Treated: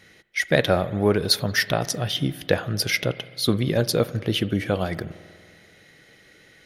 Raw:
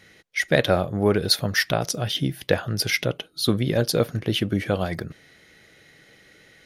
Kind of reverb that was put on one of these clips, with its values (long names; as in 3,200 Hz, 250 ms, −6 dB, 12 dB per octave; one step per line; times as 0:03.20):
spring reverb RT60 2 s, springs 48 ms, chirp 45 ms, DRR 16.5 dB